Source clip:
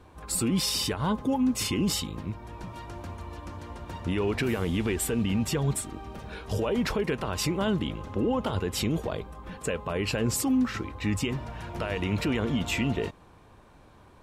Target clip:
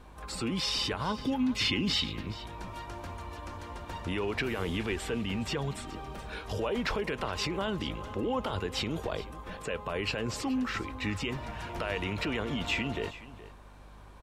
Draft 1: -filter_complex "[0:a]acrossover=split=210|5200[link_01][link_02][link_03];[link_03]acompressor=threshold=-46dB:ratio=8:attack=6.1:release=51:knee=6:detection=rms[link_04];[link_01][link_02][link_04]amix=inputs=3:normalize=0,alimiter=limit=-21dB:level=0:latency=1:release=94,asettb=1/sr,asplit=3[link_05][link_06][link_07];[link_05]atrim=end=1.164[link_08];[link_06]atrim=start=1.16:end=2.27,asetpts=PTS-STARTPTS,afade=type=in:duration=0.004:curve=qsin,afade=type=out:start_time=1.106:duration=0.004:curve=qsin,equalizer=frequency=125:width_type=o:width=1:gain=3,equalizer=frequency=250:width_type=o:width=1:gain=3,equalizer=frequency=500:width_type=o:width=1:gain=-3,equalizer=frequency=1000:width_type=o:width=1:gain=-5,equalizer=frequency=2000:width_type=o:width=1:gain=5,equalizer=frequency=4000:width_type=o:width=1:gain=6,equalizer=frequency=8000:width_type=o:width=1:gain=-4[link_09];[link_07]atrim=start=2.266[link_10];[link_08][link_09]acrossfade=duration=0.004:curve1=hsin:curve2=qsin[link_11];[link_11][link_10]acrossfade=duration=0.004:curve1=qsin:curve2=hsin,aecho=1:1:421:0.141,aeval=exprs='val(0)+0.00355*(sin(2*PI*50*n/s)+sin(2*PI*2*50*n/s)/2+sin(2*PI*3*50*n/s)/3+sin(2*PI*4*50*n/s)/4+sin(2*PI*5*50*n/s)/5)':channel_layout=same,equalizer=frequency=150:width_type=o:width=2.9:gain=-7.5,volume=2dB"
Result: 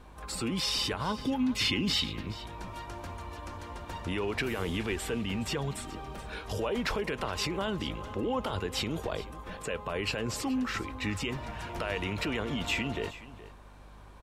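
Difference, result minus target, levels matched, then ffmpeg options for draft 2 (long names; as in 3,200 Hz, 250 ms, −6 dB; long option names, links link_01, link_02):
downward compressor: peak gain reduction −9 dB
-filter_complex "[0:a]acrossover=split=210|5200[link_01][link_02][link_03];[link_03]acompressor=threshold=-56dB:ratio=8:attack=6.1:release=51:knee=6:detection=rms[link_04];[link_01][link_02][link_04]amix=inputs=3:normalize=0,alimiter=limit=-21dB:level=0:latency=1:release=94,asettb=1/sr,asplit=3[link_05][link_06][link_07];[link_05]atrim=end=1.164[link_08];[link_06]atrim=start=1.16:end=2.27,asetpts=PTS-STARTPTS,afade=type=in:duration=0.004:curve=qsin,afade=type=out:start_time=1.106:duration=0.004:curve=qsin,equalizer=frequency=125:width_type=o:width=1:gain=3,equalizer=frequency=250:width_type=o:width=1:gain=3,equalizer=frequency=500:width_type=o:width=1:gain=-3,equalizer=frequency=1000:width_type=o:width=1:gain=-5,equalizer=frequency=2000:width_type=o:width=1:gain=5,equalizer=frequency=4000:width_type=o:width=1:gain=6,equalizer=frequency=8000:width_type=o:width=1:gain=-4[link_09];[link_07]atrim=start=2.266[link_10];[link_08][link_09]acrossfade=duration=0.004:curve1=hsin:curve2=qsin[link_11];[link_11][link_10]acrossfade=duration=0.004:curve1=qsin:curve2=hsin,aecho=1:1:421:0.141,aeval=exprs='val(0)+0.00355*(sin(2*PI*50*n/s)+sin(2*PI*2*50*n/s)/2+sin(2*PI*3*50*n/s)/3+sin(2*PI*4*50*n/s)/4+sin(2*PI*5*50*n/s)/5)':channel_layout=same,equalizer=frequency=150:width_type=o:width=2.9:gain=-7.5,volume=2dB"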